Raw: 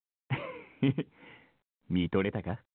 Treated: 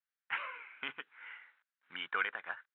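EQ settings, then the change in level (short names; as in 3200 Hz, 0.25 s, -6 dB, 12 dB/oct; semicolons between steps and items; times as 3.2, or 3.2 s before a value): dynamic EQ 2000 Hz, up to -5 dB, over -54 dBFS, Q 3.7; ladder band-pass 1700 Hz, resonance 60%; +14.5 dB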